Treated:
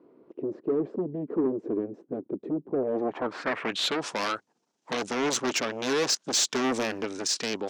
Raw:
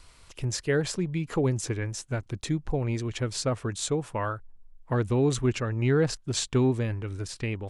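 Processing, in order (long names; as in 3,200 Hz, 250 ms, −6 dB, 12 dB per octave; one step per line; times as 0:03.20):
in parallel at −10.5 dB: sine wavefolder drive 16 dB, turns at −14 dBFS
on the sum: low-pass filter sweep 360 Hz → 6,200 Hz, 0:02.68–0:04.12
0:06.64–0:07.05: leveller curve on the samples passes 1
high-pass filter 240 Hz 24 dB per octave
soft clipping −15.5 dBFS, distortion −19 dB
level −2 dB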